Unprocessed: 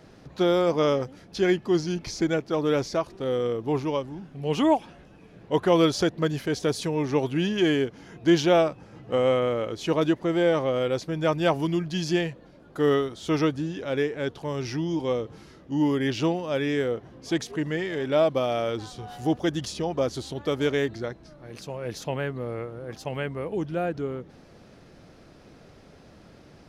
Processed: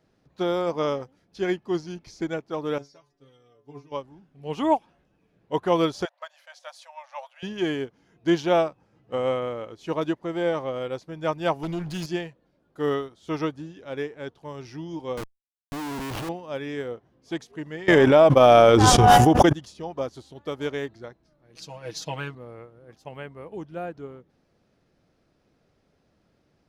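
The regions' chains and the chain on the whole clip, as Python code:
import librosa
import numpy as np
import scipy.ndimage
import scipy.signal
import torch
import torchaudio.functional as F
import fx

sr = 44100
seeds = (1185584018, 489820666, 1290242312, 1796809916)

y = fx.chain(x, sr, fx.peak_eq(hz=5700.0, db=6.5, octaves=0.7),
    fx.stiff_resonator(f0_hz=140.0, decay_s=0.23, stiffness=0.002), at=(2.78, 3.92))
y = fx.chain(y, sr, fx.brickwall_highpass(low_hz=520.0),
    fx.high_shelf(hz=6700.0, db=-5.5), at=(6.05, 7.43))
y = fx.chain(y, sr, fx.lower_of_two(delay_ms=0.44),
    fx.env_flatten(amount_pct=70), at=(11.63, 12.06))
y = fx.chain(y, sr, fx.peak_eq(hz=2500.0, db=5.5, octaves=2.0),
    fx.schmitt(flips_db=-27.5),
    fx.env_flatten(amount_pct=50), at=(15.17, 16.29))
y = fx.chain(y, sr, fx.peak_eq(hz=4100.0, db=-10.0, octaves=0.35),
    fx.transient(attack_db=8, sustain_db=-11),
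    fx.env_flatten(amount_pct=100), at=(17.88, 19.53))
y = fx.chain(y, sr, fx.peak_eq(hz=5000.0, db=11.5, octaves=1.7),
    fx.comb(ms=6.3, depth=0.85), at=(21.55, 22.35))
y = fx.dynamic_eq(y, sr, hz=940.0, q=1.5, threshold_db=-41.0, ratio=4.0, max_db=5)
y = fx.upward_expand(y, sr, threshold_db=-43.0, expansion=1.5)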